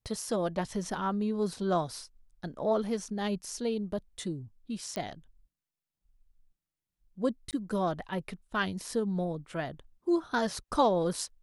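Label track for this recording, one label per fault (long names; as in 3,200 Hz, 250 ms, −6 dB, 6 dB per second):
4.960000	4.960000	click −21 dBFS
7.510000	7.530000	drop-out 18 ms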